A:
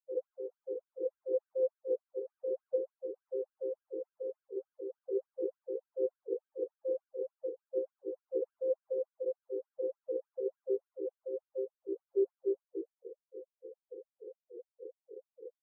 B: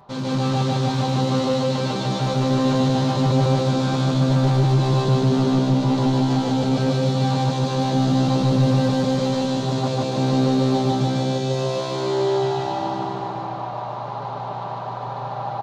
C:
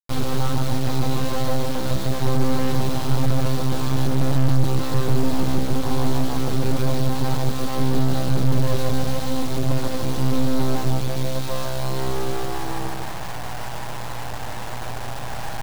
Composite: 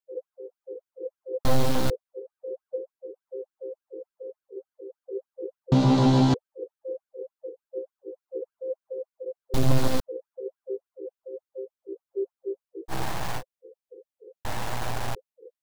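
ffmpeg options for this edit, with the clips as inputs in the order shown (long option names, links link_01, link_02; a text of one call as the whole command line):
ffmpeg -i take0.wav -i take1.wav -i take2.wav -filter_complex "[2:a]asplit=4[link_01][link_02][link_03][link_04];[0:a]asplit=6[link_05][link_06][link_07][link_08][link_09][link_10];[link_05]atrim=end=1.452[link_11];[link_01]atrim=start=1.448:end=1.902[link_12];[link_06]atrim=start=1.898:end=5.722[link_13];[1:a]atrim=start=5.718:end=6.342[link_14];[link_07]atrim=start=6.338:end=9.542[link_15];[link_02]atrim=start=9.538:end=10.002[link_16];[link_08]atrim=start=9.998:end=12.94[link_17];[link_03]atrim=start=12.88:end=13.43[link_18];[link_09]atrim=start=13.37:end=14.452[link_19];[link_04]atrim=start=14.448:end=15.152[link_20];[link_10]atrim=start=15.148[link_21];[link_11][link_12]acrossfade=duration=0.004:curve1=hsin:curve2=hsin[link_22];[link_22][link_13]acrossfade=duration=0.004:curve1=hsin:curve2=hsin[link_23];[link_23][link_14]acrossfade=duration=0.004:curve1=hsin:curve2=hsin[link_24];[link_24][link_15]acrossfade=duration=0.004:curve1=hsin:curve2=hsin[link_25];[link_25][link_16]acrossfade=duration=0.004:curve1=hsin:curve2=hsin[link_26];[link_26][link_17]acrossfade=duration=0.004:curve1=hsin:curve2=hsin[link_27];[link_27][link_18]acrossfade=duration=0.06:curve1=tri:curve2=tri[link_28];[link_28][link_19]acrossfade=duration=0.06:curve1=tri:curve2=tri[link_29];[link_29][link_20]acrossfade=duration=0.004:curve1=hsin:curve2=hsin[link_30];[link_30][link_21]acrossfade=duration=0.004:curve1=hsin:curve2=hsin" out.wav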